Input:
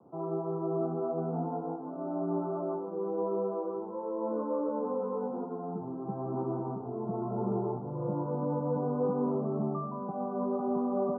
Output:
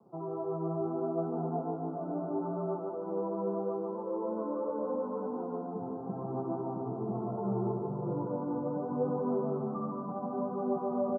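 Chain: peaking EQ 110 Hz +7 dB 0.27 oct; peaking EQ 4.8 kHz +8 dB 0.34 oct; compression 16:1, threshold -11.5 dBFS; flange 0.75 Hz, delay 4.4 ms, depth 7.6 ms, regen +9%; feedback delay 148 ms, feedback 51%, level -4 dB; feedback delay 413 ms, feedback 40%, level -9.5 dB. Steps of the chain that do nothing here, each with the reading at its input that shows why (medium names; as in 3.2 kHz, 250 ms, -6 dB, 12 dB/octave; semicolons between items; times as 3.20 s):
peaking EQ 4.8 kHz: input has nothing above 1.4 kHz; compression, threshold -11.5 dBFS: peak at its input -19.5 dBFS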